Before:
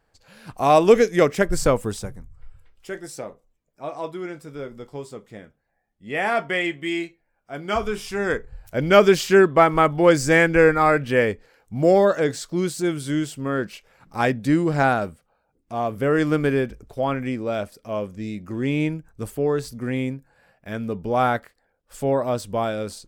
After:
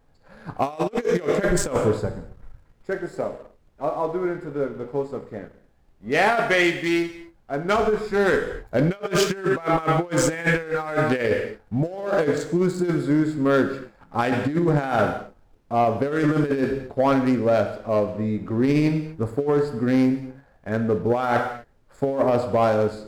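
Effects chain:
adaptive Wiener filter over 15 samples
low-shelf EQ 110 Hz −9.5 dB
reverb whose tail is shaped and stops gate 290 ms falling, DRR 7 dB
background noise brown −60 dBFS
compressor whose output falls as the input rises −23 dBFS, ratio −0.5
leveller curve on the samples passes 1

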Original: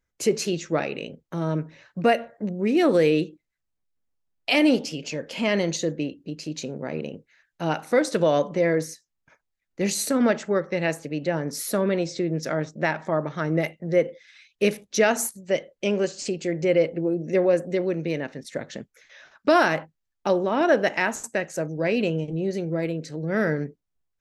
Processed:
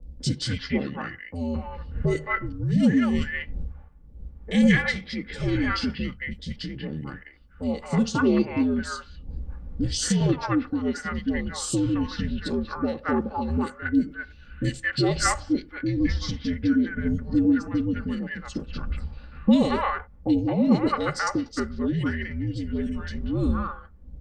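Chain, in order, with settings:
wind on the microphone 94 Hz −35 dBFS
comb filter 3.3 ms, depth 56%
formants moved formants −5 semitones
low-shelf EQ 180 Hz −5.5 dB
three-band delay without the direct sound lows, highs, mids 30/220 ms, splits 770/2,800 Hz
frequency shifter −80 Hz

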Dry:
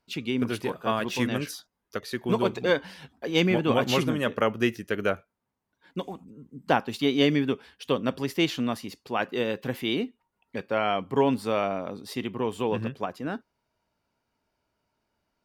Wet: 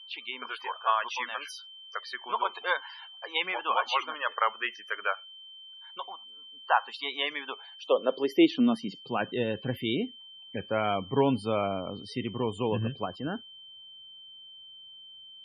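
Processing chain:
steady tone 3,100 Hz −44 dBFS
high-pass filter sweep 1,000 Hz → 86 Hz, 0:07.42–0:09.51
spectral peaks only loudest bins 64
level −2.5 dB

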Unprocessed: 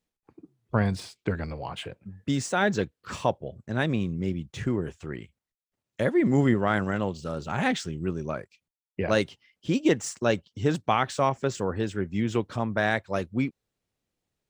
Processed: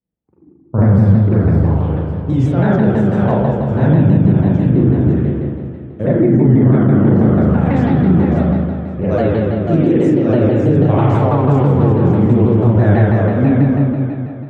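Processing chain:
high-pass filter 59 Hz
tilt shelving filter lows +9 dB, about 1,100 Hz
echo with a time of its own for lows and highs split 410 Hz, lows 190 ms, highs 556 ms, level −7 dB
noise gate −30 dBFS, range −10 dB
convolution reverb RT60 2.0 s, pre-delay 38 ms, DRR −10 dB
brickwall limiter −1.5 dBFS, peak gain reduction 8.5 dB
low-shelf EQ 220 Hz +7 dB
pitch modulation by a square or saw wave saw down 6.1 Hz, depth 160 cents
level −5 dB

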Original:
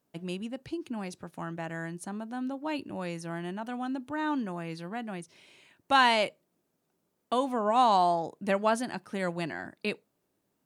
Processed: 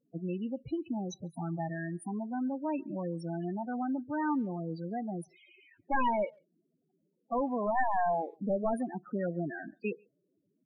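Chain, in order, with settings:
wavefolder on the positive side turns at −23 dBFS
0:01.11–0:01.73: thirty-one-band graphic EQ 160 Hz +4 dB, 800 Hz +4 dB, 2,000 Hz +5 dB, 4,000 Hz +9 dB, 6,300 Hz +12 dB, 10,000 Hz +6 dB
in parallel at −0.5 dB: downward compressor 10 to 1, threshold −40 dBFS, peak gain reduction 20 dB
on the sum: spectral peaks only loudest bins 8
far-end echo of a speakerphone 140 ms, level −30 dB
level −1.5 dB

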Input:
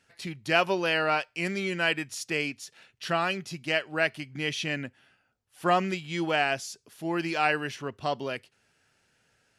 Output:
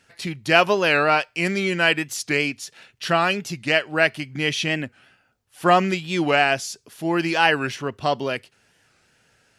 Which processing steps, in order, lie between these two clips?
wow of a warped record 45 rpm, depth 160 cents
level +7.5 dB

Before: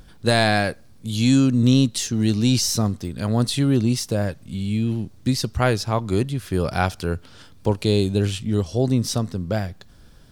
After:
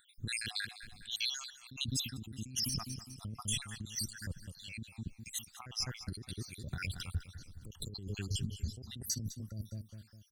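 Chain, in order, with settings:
time-frequency cells dropped at random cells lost 78%
repeating echo 204 ms, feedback 44%, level −16.5 dB
compressor whose output falls as the input rises −31 dBFS, ratio −1
guitar amp tone stack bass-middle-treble 6-0-2
level +8.5 dB

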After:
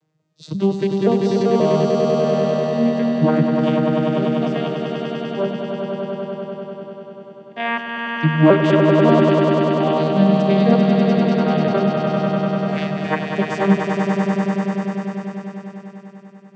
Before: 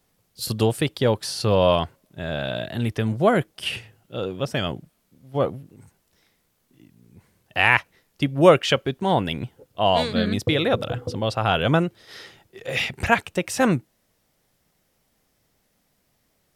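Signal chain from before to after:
vocoder with an arpeggio as carrier major triad, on D#3, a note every 531 ms
echo that builds up and dies away 98 ms, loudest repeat 5, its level −5 dB
level +2 dB

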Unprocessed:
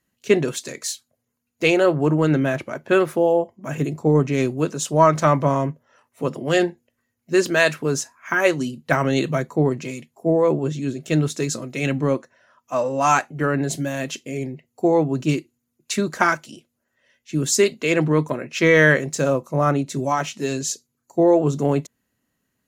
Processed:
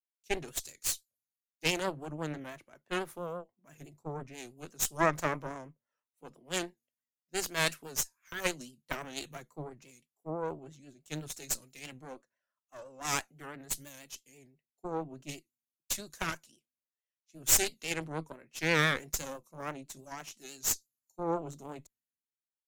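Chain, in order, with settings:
first-order pre-emphasis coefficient 0.8
harmonic generator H 6 −10 dB, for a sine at −8.5 dBFS
pitch vibrato 6 Hz 78 cents
multiband upward and downward expander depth 70%
level −8.5 dB

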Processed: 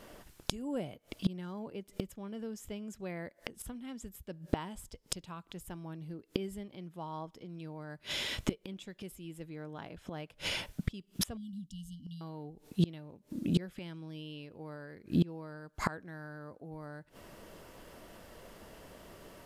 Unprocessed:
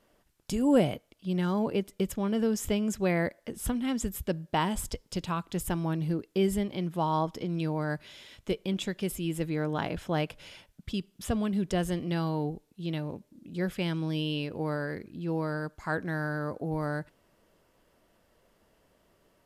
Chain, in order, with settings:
0:11.37–0:12.21: linear-phase brick-wall band-stop 290–2,800 Hz
gate with flip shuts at −31 dBFS, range −28 dB
level +14 dB

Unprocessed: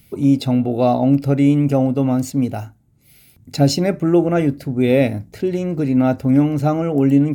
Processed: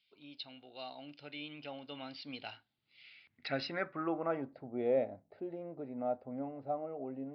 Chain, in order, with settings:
source passing by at 0:02.80, 14 m/s, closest 6.7 metres
downsampling to 11,025 Hz
band-pass filter sweep 3,400 Hz → 680 Hz, 0:02.78–0:04.72
level +4 dB

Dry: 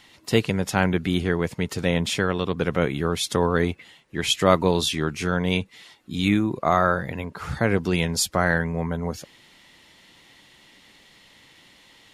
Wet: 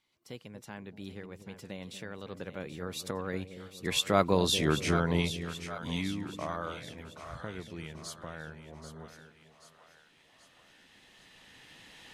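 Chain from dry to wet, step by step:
camcorder AGC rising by 8.7 dB per second
source passing by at 0:04.59, 26 m/s, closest 11 metres
echo with a time of its own for lows and highs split 570 Hz, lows 235 ms, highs 782 ms, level −10.5 dB
level −4.5 dB

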